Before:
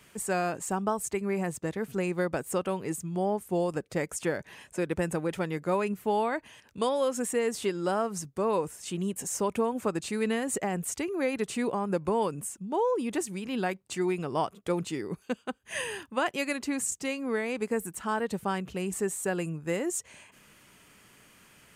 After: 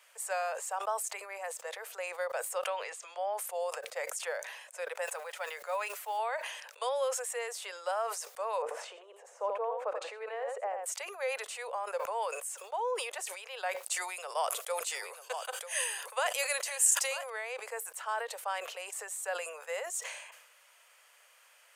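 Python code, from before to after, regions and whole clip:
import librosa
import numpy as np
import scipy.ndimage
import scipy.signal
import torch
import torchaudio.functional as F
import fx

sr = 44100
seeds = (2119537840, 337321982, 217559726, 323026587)

y = fx.chain(x, sr, fx.env_lowpass_down(base_hz=2800.0, full_db=-27.0),
    fx.high_shelf(hz=2100.0, db=9.5),
    fx.band_squash(depth_pct=40), at=(2.63, 3.34))
y = fx.chain(y, sr, fx.block_float(bits=7),
    fx.low_shelf(hz=490.0, db=-8.5),
    fx.comb(ms=7.0, depth=0.3), at=(5.04, 6.19))
y = fx.chain(y, sr, fx.lowpass(hz=2000.0, slope=6),
    fx.tilt_eq(slope=-4.5),
    fx.echo_single(ms=86, db=-8.5), at=(8.62, 10.86))
y = fx.chain(y, sr, fx.peak_eq(hz=11000.0, db=12.0, octaves=1.8),
    fx.echo_single(ms=943, db=-14.5), at=(13.83, 17.3))
y = scipy.signal.sosfilt(scipy.signal.butter(12, 500.0, 'highpass', fs=sr, output='sos'), y)
y = fx.sustainer(y, sr, db_per_s=53.0)
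y = F.gain(torch.from_numpy(y), -3.5).numpy()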